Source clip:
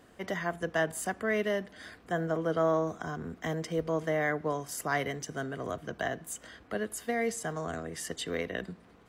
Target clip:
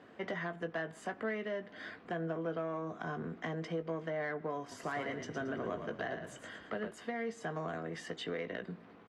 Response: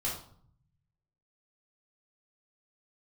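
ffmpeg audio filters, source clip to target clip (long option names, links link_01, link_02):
-filter_complex "[0:a]acompressor=threshold=-35dB:ratio=5,asoftclip=type=tanh:threshold=-29.5dB,highpass=150,lowpass=3200,asplit=2[link_01][link_02];[link_02]adelay=18,volume=-9dB[link_03];[link_01][link_03]amix=inputs=2:normalize=0,asettb=1/sr,asplit=3[link_04][link_05][link_06];[link_04]atrim=end=4.604[link_07];[link_05]atrim=start=4.6:end=6.91,asetpts=PTS-STARTPTS,afade=type=in:duration=0.004:curve=qsin,afade=type=out:start_time=2.306:duration=0.004:curve=qsin,asplit=5[link_08][link_09][link_10][link_11][link_12];[link_09]adelay=113,afreqshift=-32,volume=-7dB[link_13];[link_10]adelay=226,afreqshift=-64,volume=-16.9dB[link_14];[link_11]adelay=339,afreqshift=-96,volume=-26.8dB[link_15];[link_12]adelay=452,afreqshift=-128,volume=-36.7dB[link_16];[link_08][link_13][link_14][link_15][link_16]amix=inputs=5:normalize=0,atrim=end_sample=101871[link_17];[link_06]atrim=start=6.906[link_18];[link_07][link_17]acrossfade=duration=0.004:curve1=hsin:curve2=qsin[link_19];[link_19][link_18]acrossfade=duration=0.004:curve1=qsin:curve2=hsin,volume=1.5dB"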